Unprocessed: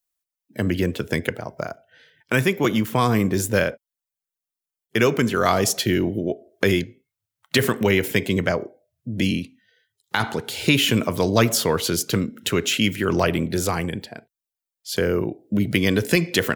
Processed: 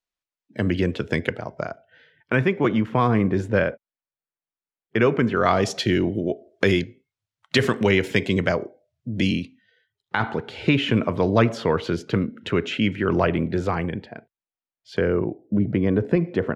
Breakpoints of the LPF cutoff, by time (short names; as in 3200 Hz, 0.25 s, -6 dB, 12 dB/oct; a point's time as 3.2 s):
1.57 s 4300 Hz
2.4 s 2100 Hz
5.31 s 2100 Hz
5.88 s 5400 Hz
9.4 s 5400 Hz
10.15 s 2200 Hz
15.05 s 2200 Hz
15.57 s 1000 Hz